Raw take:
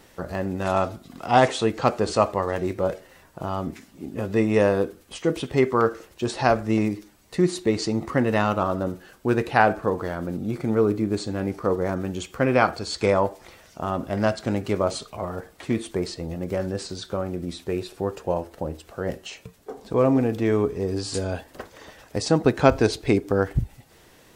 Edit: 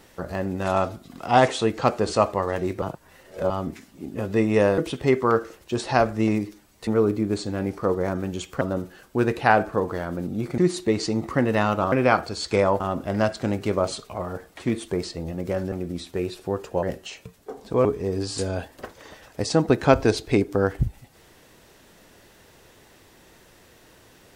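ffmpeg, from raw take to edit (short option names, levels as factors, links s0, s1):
-filter_complex "[0:a]asplit=12[s0][s1][s2][s3][s4][s5][s6][s7][s8][s9][s10][s11];[s0]atrim=end=2.822[s12];[s1]atrim=start=2.818:end=3.502,asetpts=PTS-STARTPTS,areverse[s13];[s2]atrim=start=3.498:end=4.782[s14];[s3]atrim=start=5.278:end=7.372[s15];[s4]atrim=start=10.678:end=12.422[s16];[s5]atrim=start=8.708:end=10.682[s17];[s6]atrim=start=7.368:end=8.712[s18];[s7]atrim=start=12.418:end=13.302[s19];[s8]atrim=start=13.828:end=16.752[s20];[s9]atrim=start=17.248:end=18.362[s21];[s10]atrim=start=19.028:end=20.052[s22];[s11]atrim=start=20.608[s23];[s12][s13]acrossfade=d=0.004:c1=hsin:c2=hsin[s24];[s24][s14]acrossfade=d=0.004:c1=hsin:c2=hsin[s25];[s25][s15]acrossfade=d=0.004:c1=hsin:c2=hsin[s26];[s26][s16]acrossfade=d=0.004:c1=hsin:c2=hsin[s27];[s27][s17]acrossfade=d=0.004:c1=hsin:c2=hsin[s28];[s28][s18]acrossfade=d=0.004:c1=hsin:c2=hsin[s29];[s29][s19]acrossfade=d=0.004:c1=hsin:c2=hsin[s30];[s30][s20]acrossfade=d=0.004:c1=hsin:c2=hsin[s31];[s31][s21]acrossfade=d=0.004:c1=hsin:c2=hsin[s32];[s32][s22]acrossfade=d=0.004:c1=hsin:c2=hsin[s33];[s33][s23]acrossfade=d=0.004:c1=hsin:c2=hsin"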